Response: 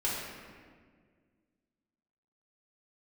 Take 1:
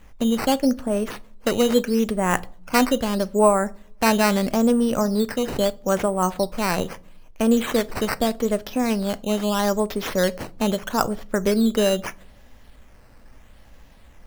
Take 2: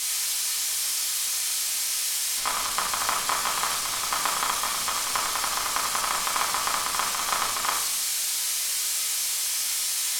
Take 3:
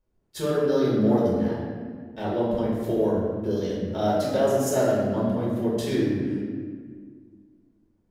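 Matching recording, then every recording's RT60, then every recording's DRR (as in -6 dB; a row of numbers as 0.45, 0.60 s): 3; not exponential, 0.90 s, 1.8 s; 16.0, -5.0, -7.5 dB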